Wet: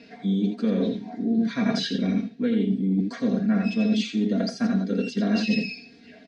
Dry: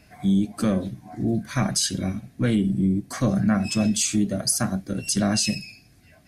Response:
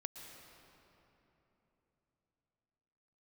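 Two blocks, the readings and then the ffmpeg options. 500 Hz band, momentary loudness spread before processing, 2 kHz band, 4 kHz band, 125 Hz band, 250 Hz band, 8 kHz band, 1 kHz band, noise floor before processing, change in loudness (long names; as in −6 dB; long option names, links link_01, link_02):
+1.0 dB, 7 LU, −0.5 dB, −4.5 dB, −4.5 dB, +1.0 dB, below −20 dB, −4.5 dB, −55 dBFS, −1.0 dB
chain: -filter_complex "[0:a]highpass=200,equalizer=frequency=240:width_type=q:width=4:gain=7,equalizer=frequency=430:width_type=q:width=4:gain=10,equalizer=frequency=770:width_type=q:width=4:gain=-5,equalizer=frequency=1200:width_type=q:width=4:gain=-8,equalizer=frequency=3800:width_type=q:width=4:gain=5,lowpass=frequency=5000:width=0.5412,lowpass=frequency=5000:width=1.3066,acrossover=split=3200[link_01][link_02];[link_02]acompressor=threshold=-42dB:ratio=4:attack=1:release=60[link_03];[link_01][link_03]amix=inputs=2:normalize=0,aecho=1:1:84:0.501,areverse,acompressor=threshold=-27dB:ratio=10,areverse,aecho=1:1:4.3:0.69,volume=4dB"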